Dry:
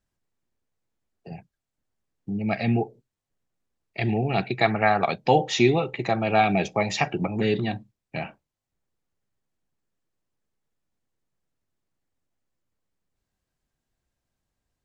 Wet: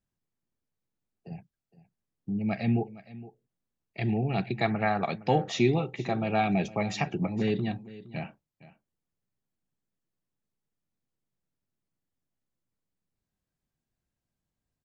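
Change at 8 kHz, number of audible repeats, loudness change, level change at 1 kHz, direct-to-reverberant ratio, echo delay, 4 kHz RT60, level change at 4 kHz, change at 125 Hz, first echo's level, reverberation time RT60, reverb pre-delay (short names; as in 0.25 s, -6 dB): n/a, 1, -5.0 dB, -7.0 dB, none, 0.464 s, none, -7.5 dB, -2.5 dB, -18.0 dB, none, none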